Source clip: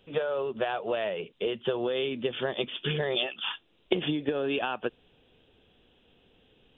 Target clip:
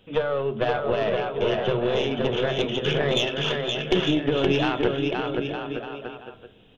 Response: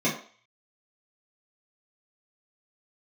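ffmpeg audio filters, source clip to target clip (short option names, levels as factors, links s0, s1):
-filter_complex "[0:a]aecho=1:1:520|910|1202|1422|1586:0.631|0.398|0.251|0.158|0.1,aeval=exprs='(tanh(7.94*val(0)+0.6)-tanh(0.6))/7.94':c=same,asplit=2[s0][s1];[1:a]atrim=start_sample=2205,asetrate=26901,aresample=44100[s2];[s1][s2]afir=irnorm=-1:irlink=0,volume=0.0631[s3];[s0][s3]amix=inputs=2:normalize=0,volume=2.11"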